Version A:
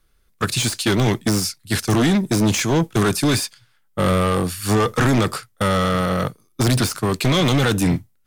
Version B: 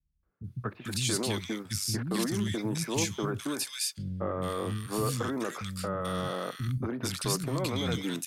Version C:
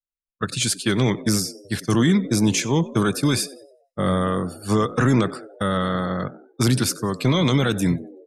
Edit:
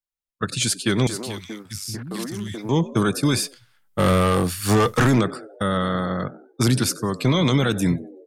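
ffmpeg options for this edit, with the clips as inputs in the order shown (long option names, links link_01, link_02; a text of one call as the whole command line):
ffmpeg -i take0.wav -i take1.wav -i take2.wav -filter_complex "[2:a]asplit=3[link_01][link_02][link_03];[link_01]atrim=end=1.072[link_04];[1:a]atrim=start=1.068:end=2.692[link_05];[link_02]atrim=start=2.688:end=3.59[link_06];[0:a]atrim=start=3.35:end=5.24[link_07];[link_03]atrim=start=5[link_08];[link_04][link_05]acrossfade=duration=0.004:curve1=hsin:curve2=hsin[link_09];[link_09][link_06]acrossfade=duration=0.004:curve1=hsin:curve2=hsin[link_10];[link_10][link_07]acrossfade=duration=0.24:curve1=tri:curve2=tri[link_11];[link_11][link_08]acrossfade=duration=0.24:curve1=tri:curve2=tri" out.wav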